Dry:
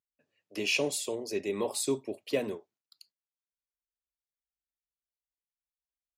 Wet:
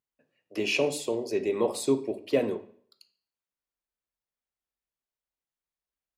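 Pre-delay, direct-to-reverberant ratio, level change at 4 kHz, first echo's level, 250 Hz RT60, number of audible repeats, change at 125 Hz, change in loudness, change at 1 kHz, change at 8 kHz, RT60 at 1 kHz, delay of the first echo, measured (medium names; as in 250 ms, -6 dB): 5 ms, 10.0 dB, -0.5 dB, no echo, 0.55 s, no echo, +4.0 dB, +3.0 dB, +4.5 dB, -3.0 dB, 0.60 s, no echo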